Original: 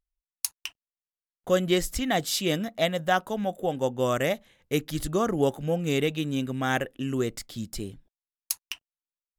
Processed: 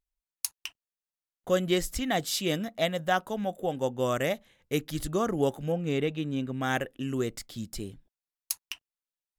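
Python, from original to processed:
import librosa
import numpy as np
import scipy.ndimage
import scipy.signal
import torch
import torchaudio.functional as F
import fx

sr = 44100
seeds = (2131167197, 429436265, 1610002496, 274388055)

y = fx.lowpass(x, sr, hz=2400.0, slope=6, at=(5.72, 6.61))
y = F.gain(torch.from_numpy(y), -2.5).numpy()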